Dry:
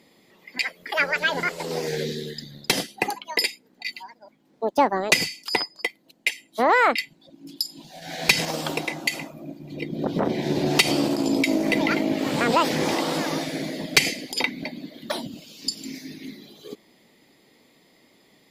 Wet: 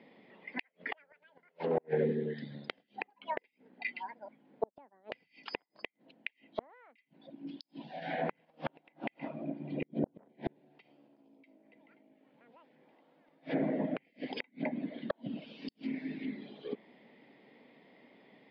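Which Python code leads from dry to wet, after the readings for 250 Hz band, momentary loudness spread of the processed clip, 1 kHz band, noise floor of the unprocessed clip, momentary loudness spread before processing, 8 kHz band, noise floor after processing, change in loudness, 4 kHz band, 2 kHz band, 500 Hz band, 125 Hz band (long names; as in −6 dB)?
−12.5 dB, 14 LU, −18.0 dB, −60 dBFS, 17 LU, below −40 dB, −77 dBFS, −15.5 dB, −25.5 dB, −19.5 dB, −11.0 dB, −11.5 dB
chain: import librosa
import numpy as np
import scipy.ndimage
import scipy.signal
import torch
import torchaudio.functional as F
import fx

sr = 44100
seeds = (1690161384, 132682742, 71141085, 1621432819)

y = fx.cabinet(x, sr, low_hz=150.0, low_slope=24, high_hz=4300.0, hz=(170.0, 340.0, 1200.0, 4000.0), db=(-5, -6, -6, -5))
y = fx.gate_flip(y, sr, shuts_db=-19.0, range_db=-40)
y = fx.air_absorb(y, sr, metres=330.0)
y = fx.env_lowpass_down(y, sr, base_hz=1300.0, full_db=-32.0)
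y = F.gain(torch.from_numpy(y), 2.0).numpy()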